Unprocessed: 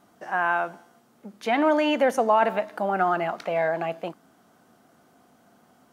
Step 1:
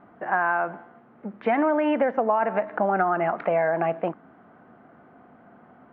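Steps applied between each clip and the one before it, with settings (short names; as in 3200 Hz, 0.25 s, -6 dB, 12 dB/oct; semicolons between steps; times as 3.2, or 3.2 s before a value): inverse Chebyshev low-pass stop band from 8400 Hz, stop band 70 dB; compressor 6:1, threshold -26 dBFS, peak gain reduction 10.5 dB; gain +7 dB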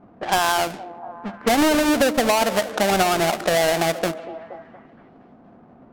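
half-waves squared off; delay with a stepping band-pass 0.235 s, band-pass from 340 Hz, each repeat 0.7 oct, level -11 dB; low-pass opened by the level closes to 860 Hz, open at -19.5 dBFS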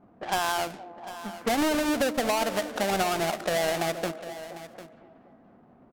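echo 0.75 s -14.5 dB; gain -7.5 dB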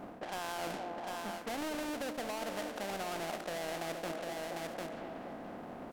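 per-bin compression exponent 0.6; reverse; compressor 6:1, threshold -32 dBFS, peak gain reduction 12.5 dB; reverse; gain -5 dB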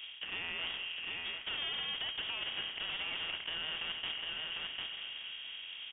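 inverted band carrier 3500 Hz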